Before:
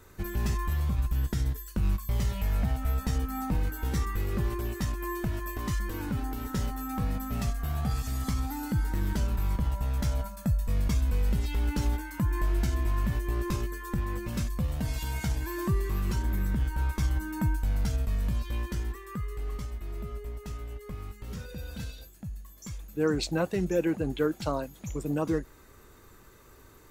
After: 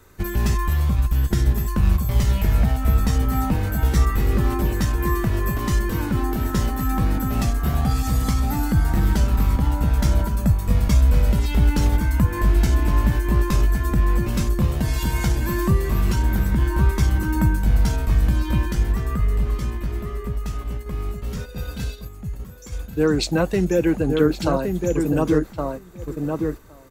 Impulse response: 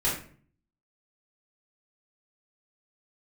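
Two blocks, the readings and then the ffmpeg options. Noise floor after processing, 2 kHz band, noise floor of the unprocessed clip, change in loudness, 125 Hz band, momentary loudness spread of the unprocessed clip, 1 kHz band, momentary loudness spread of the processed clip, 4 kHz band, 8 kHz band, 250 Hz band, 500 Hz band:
−37 dBFS, +9.0 dB, −54 dBFS, +9.5 dB, +10.0 dB, 10 LU, +9.5 dB, 10 LU, +8.5 dB, +8.5 dB, +10.0 dB, +9.0 dB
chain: -filter_complex "[0:a]asplit=2[link_01][link_02];[link_02]adelay=1116,lowpass=frequency=1400:poles=1,volume=-4dB,asplit=2[link_03][link_04];[link_04]adelay=1116,lowpass=frequency=1400:poles=1,volume=0.16,asplit=2[link_05][link_06];[link_06]adelay=1116,lowpass=frequency=1400:poles=1,volume=0.16[link_07];[link_01][link_03][link_05][link_07]amix=inputs=4:normalize=0,acrossover=split=370[link_08][link_09];[link_09]acompressor=threshold=-27dB:ratio=6[link_10];[link_08][link_10]amix=inputs=2:normalize=0,agate=range=-6dB:threshold=-38dB:ratio=16:detection=peak,volume=8.5dB"

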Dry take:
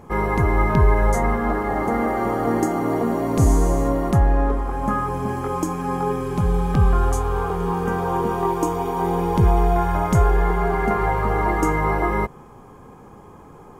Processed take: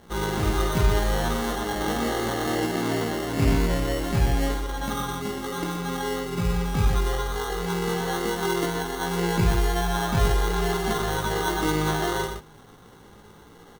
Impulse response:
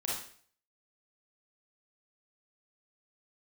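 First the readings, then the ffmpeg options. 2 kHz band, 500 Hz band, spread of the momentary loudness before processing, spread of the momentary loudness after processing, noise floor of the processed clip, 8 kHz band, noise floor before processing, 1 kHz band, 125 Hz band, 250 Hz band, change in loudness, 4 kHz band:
−1.0 dB, −4.5 dB, 6 LU, 6 LU, −49 dBFS, +3.5 dB, −44 dBFS, −6.5 dB, −5.0 dB, −4.5 dB, −4.5 dB, +12.5 dB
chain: -filter_complex "[0:a]flanger=delay=17:depth=2.7:speed=1.4,acrusher=samples=18:mix=1:aa=0.000001,asplit=2[link_01][link_02];[link_02]aecho=0:1:51|122:0.398|0.473[link_03];[link_01][link_03]amix=inputs=2:normalize=0,volume=-4dB"

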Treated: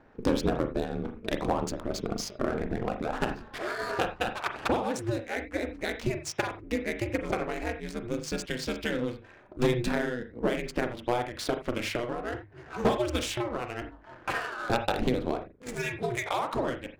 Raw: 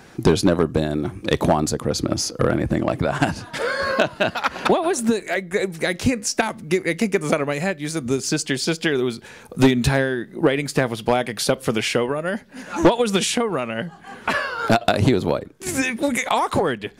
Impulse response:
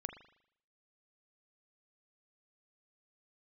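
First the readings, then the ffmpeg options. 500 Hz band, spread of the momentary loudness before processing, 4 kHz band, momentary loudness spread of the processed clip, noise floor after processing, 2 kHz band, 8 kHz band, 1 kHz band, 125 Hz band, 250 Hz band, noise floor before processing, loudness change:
−9.5 dB, 7 LU, −11.0 dB, 7 LU, −52 dBFS, −10.0 dB, −14.0 dB, −8.5 dB, −11.0 dB, −10.5 dB, −44 dBFS, −10.0 dB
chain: -filter_complex "[0:a]adynamicsmooth=sensitivity=5.5:basefreq=1300,aeval=exprs='val(0)*sin(2*PI*120*n/s)':channel_layout=same,bandreject=frequency=50:width_type=h:width=6,bandreject=frequency=100:width_type=h:width=6,bandreject=frequency=150:width_type=h:width=6[link_01];[1:a]atrim=start_sample=2205,atrim=end_sample=4410[link_02];[link_01][link_02]afir=irnorm=-1:irlink=0,volume=-4.5dB"

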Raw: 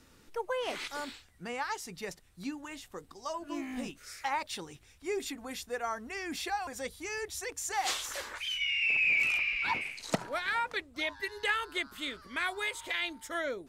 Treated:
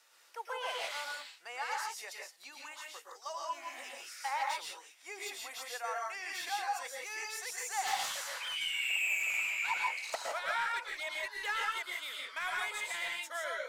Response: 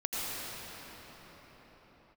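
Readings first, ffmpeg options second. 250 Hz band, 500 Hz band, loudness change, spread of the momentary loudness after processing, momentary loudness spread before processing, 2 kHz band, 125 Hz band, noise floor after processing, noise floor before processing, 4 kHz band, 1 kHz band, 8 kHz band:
below −20 dB, −6.5 dB, −2.5 dB, 14 LU, 14 LU, −3.0 dB, below −20 dB, −60 dBFS, −60 dBFS, −2.0 dB, 0.0 dB, 0.0 dB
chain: -filter_complex "[0:a]acrossover=split=1500[link_01][link_02];[link_01]highpass=frequency=660:width=0.5412,highpass=frequency=660:width=1.3066[link_03];[link_02]asoftclip=type=tanh:threshold=-35.5dB[link_04];[link_03][link_04]amix=inputs=2:normalize=0[link_05];[1:a]atrim=start_sample=2205,afade=type=out:start_time=0.18:duration=0.01,atrim=end_sample=8379,asetrate=32634,aresample=44100[link_06];[link_05][link_06]afir=irnorm=-1:irlink=0,volume=-1.5dB"

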